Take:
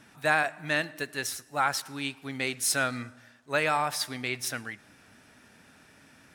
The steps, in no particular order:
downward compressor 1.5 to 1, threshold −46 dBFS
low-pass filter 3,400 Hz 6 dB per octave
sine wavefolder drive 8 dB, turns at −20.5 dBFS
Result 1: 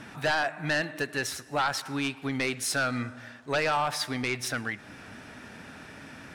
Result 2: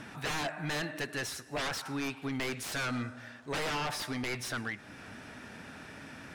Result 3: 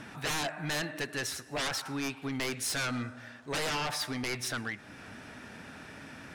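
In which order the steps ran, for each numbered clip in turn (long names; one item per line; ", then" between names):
downward compressor, then low-pass filter, then sine wavefolder
sine wavefolder, then downward compressor, then low-pass filter
low-pass filter, then sine wavefolder, then downward compressor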